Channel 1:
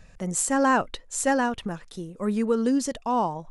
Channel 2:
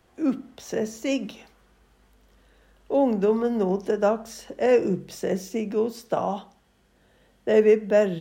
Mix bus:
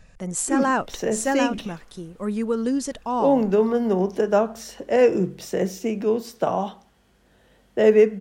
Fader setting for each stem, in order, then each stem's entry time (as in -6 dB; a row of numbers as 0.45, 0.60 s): -0.5, +2.5 dB; 0.00, 0.30 s